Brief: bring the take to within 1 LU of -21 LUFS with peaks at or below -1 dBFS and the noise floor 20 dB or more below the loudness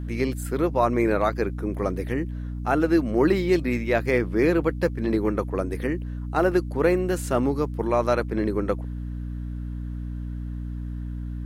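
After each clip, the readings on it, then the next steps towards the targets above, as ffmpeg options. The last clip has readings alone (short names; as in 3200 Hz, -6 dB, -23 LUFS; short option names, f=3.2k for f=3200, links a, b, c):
hum 60 Hz; harmonics up to 300 Hz; hum level -29 dBFS; loudness -25.0 LUFS; peak -8.0 dBFS; loudness target -21.0 LUFS
-> -af "bandreject=f=60:t=h:w=4,bandreject=f=120:t=h:w=4,bandreject=f=180:t=h:w=4,bandreject=f=240:t=h:w=4,bandreject=f=300:t=h:w=4"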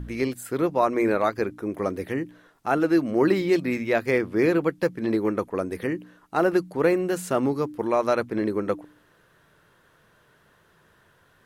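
hum none; loudness -25.0 LUFS; peak -8.5 dBFS; loudness target -21.0 LUFS
-> -af "volume=4dB"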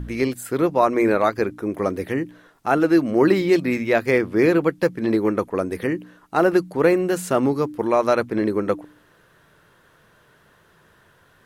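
loudness -21.0 LUFS; peak -4.5 dBFS; noise floor -57 dBFS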